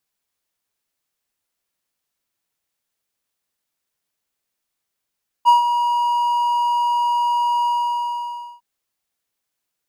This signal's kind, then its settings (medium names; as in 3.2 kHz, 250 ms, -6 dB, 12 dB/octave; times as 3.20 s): ADSR triangle 958 Hz, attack 34 ms, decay 133 ms, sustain -9 dB, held 2.20 s, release 956 ms -5 dBFS